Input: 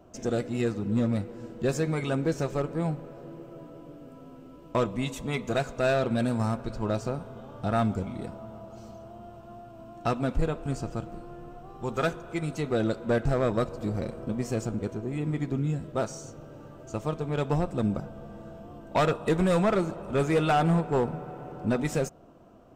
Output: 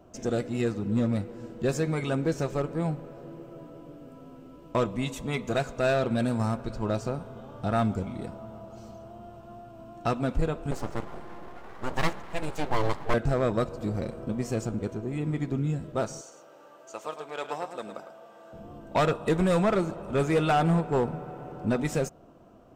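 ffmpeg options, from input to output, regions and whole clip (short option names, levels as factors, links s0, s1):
-filter_complex "[0:a]asettb=1/sr,asplit=3[s0][s1][s2];[s0]atrim=end=10.714[s3];[s1]atrim=start=10.71:end=13.14,asetpts=PTS-STARTPTS,afade=t=in:d=0.004:c=qsin,afade=t=out:st=2.426:d=0.004:c=qsin,equalizer=f=540:t=o:w=2.6:g=4,aeval=exprs='abs(val(0))':c=same[s4];[s2]atrim=start=13.136[s5];[s3][s4]acrossfade=d=0.004:c1=hsin:c2=qsin[s6];[s6][s5]acrossfade=d=0.004:c1=qsin:c2=hsin,asettb=1/sr,asplit=3[s7][s8][s9];[s7]atrim=end=16.214[s10];[s8]atrim=start=16.21:end=18.53,asetpts=PTS-STARTPTS,afade=t=in:d=0.004:c=qsin,afade=t=out:st=2.316:d=0.004:c=qsin,highpass=630,aecho=1:1:106:0.355,atrim=end_sample=102312[s11];[s9]atrim=start=18.526[s12];[s10][s11]acrossfade=d=0.004:c1=hsin:c2=qsin[s13];[s13][s12]acrossfade=d=0.004:c1=qsin:c2=hsin"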